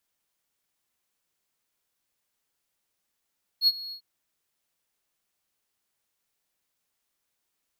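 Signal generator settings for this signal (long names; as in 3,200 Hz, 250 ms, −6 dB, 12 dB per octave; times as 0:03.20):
note with an ADSR envelope triangle 4,320 Hz, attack 64 ms, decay 40 ms, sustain −19.5 dB, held 0.31 s, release 88 ms −13.5 dBFS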